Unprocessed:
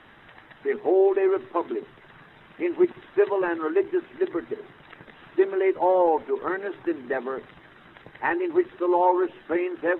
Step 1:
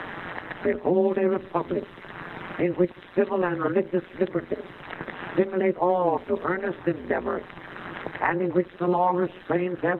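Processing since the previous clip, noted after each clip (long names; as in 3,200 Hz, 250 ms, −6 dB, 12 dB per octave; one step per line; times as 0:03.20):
amplitude modulation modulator 180 Hz, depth 90%
multiband upward and downward compressor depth 70%
level +3.5 dB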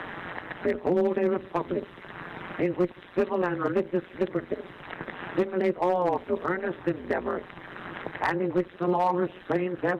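asymmetric clip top −14.5 dBFS, bottom −14 dBFS
level −2 dB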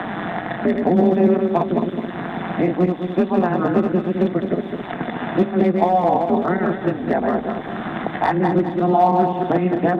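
feedback delay that plays each chunk backwards 106 ms, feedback 57%, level −4 dB
hollow resonant body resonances 210/700/3,500 Hz, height 13 dB, ringing for 30 ms
multiband upward and downward compressor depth 40%
level +1.5 dB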